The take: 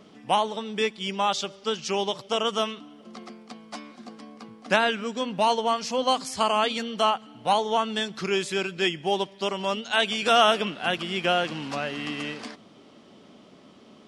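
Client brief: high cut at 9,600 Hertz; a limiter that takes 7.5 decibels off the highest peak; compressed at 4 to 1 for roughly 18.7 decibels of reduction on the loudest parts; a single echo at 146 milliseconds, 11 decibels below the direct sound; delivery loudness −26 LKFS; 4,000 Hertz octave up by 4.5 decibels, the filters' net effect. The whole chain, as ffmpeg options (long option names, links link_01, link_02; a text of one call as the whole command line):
ffmpeg -i in.wav -af "lowpass=9600,equalizer=frequency=4000:width_type=o:gain=6.5,acompressor=threshold=-37dB:ratio=4,alimiter=level_in=3.5dB:limit=-24dB:level=0:latency=1,volume=-3.5dB,aecho=1:1:146:0.282,volume=13dB" out.wav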